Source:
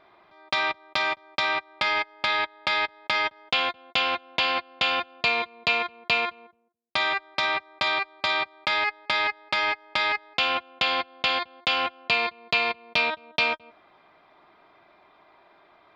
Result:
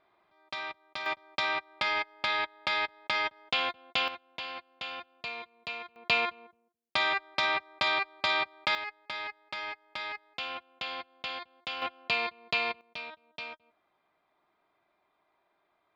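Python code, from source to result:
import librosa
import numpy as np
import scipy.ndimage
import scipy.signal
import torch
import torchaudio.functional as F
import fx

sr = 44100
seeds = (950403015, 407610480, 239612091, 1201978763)

y = fx.gain(x, sr, db=fx.steps((0.0, -12.5), (1.06, -5.0), (4.08, -15.0), (5.96, -3.0), (8.75, -13.0), (11.82, -6.0), (12.81, -17.5)))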